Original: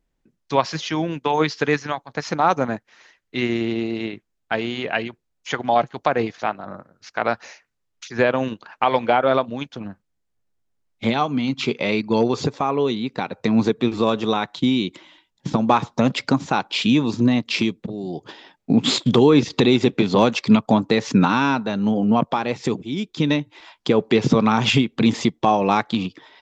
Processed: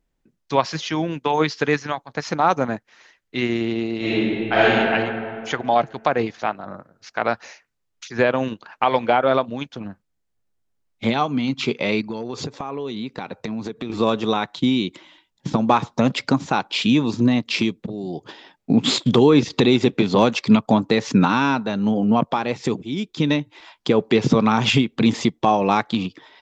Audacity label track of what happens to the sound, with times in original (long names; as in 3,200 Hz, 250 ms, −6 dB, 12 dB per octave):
3.980000	4.630000	thrown reverb, RT60 2.4 s, DRR −11 dB
12.060000	13.900000	downward compressor 12 to 1, threshold −24 dBFS